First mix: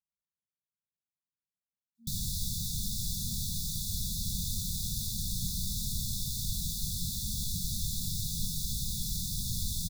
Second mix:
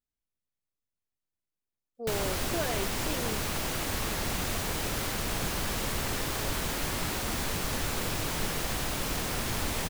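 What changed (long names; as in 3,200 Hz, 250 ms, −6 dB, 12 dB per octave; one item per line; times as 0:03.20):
speech: remove resonant band-pass 260 Hz, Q 1.2
master: remove linear-phase brick-wall band-stop 220–3,400 Hz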